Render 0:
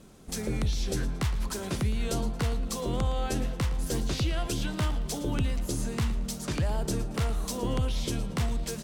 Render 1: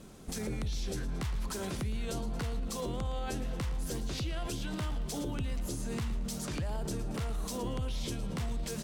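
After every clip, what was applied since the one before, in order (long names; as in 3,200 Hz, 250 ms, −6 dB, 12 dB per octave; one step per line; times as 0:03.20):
brickwall limiter −29.5 dBFS, peak gain reduction 9.5 dB
level +1.5 dB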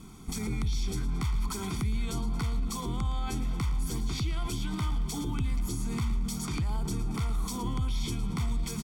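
comb filter 0.9 ms, depth 91%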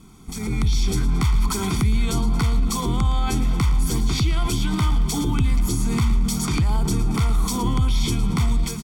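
automatic gain control gain up to 10.5 dB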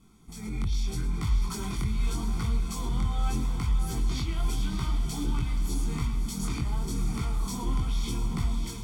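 multi-voice chorus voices 2, 0.78 Hz, delay 21 ms, depth 3.7 ms
feedback delay with all-pass diffusion 630 ms, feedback 44%, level −7 dB
level −8 dB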